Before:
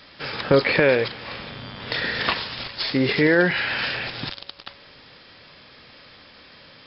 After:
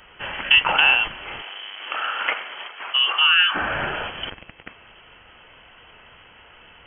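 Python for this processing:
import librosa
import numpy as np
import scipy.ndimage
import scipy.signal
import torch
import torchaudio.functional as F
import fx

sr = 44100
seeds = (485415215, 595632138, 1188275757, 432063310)

y = fx.freq_invert(x, sr, carrier_hz=3200)
y = fx.highpass(y, sr, hz=fx.line((1.41, 460.0), (3.54, 1000.0)), slope=12, at=(1.41, 3.54), fade=0.02)
y = y * 10.0 ** (1.0 / 20.0)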